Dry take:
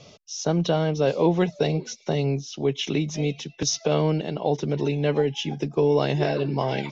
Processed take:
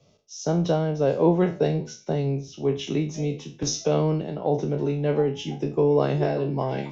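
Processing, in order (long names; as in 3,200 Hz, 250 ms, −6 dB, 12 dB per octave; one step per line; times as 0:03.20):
peak hold with a decay on every bin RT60 0.38 s
parametric band 3,700 Hz −9.5 dB 2.7 octaves
multiband upward and downward expander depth 40%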